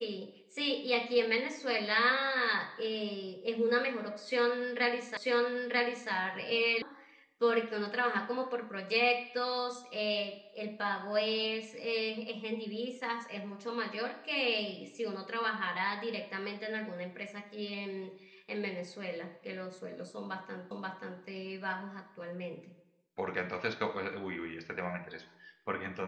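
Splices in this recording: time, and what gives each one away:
0:05.17: the same again, the last 0.94 s
0:06.82: cut off before it has died away
0:20.71: the same again, the last 0.53 s

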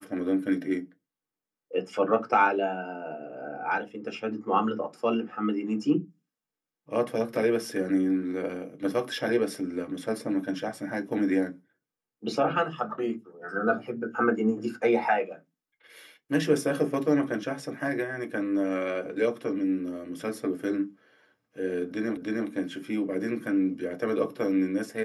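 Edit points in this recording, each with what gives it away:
0:22.17: the same again, the last 0.31 s

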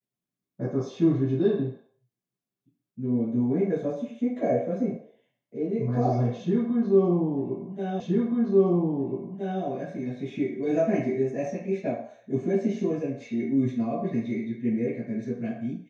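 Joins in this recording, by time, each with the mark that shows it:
0:08.00: the same again, the last 1.62 s

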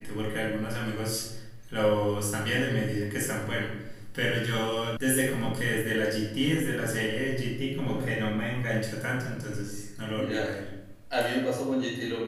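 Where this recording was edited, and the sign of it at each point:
0:04.97: cut off before it has died away

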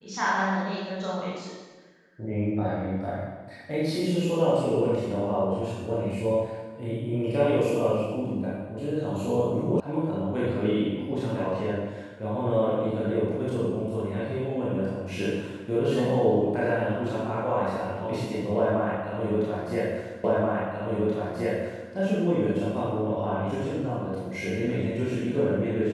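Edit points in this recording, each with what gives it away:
0:09.80: cut off before it has died away
0:20.24: the same again, the last 1.68 s

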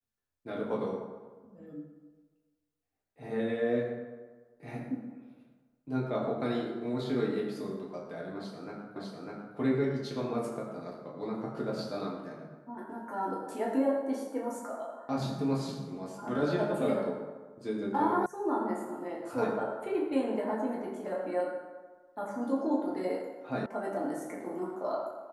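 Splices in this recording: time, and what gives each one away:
0:08.96: the same again, the last 0.6 s
0:18.26: cut off before it has died away
0:23.66: cut off before it has died away

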